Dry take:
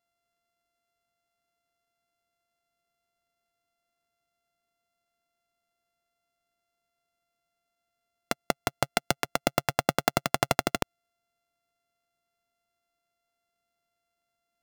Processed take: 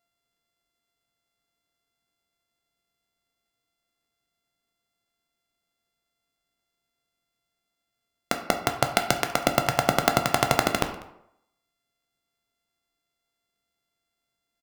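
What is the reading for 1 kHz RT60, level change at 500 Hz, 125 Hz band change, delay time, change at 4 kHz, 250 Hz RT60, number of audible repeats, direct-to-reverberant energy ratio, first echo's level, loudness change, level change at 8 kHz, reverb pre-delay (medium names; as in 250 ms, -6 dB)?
0.75 s, +4.0 dB, +4.5 dB, 195 ms, +4.0 dB, 0.75 s, 1, 5.0 dB, -23.0 dB, +4.0 dB, +3.5 dB, 10 ms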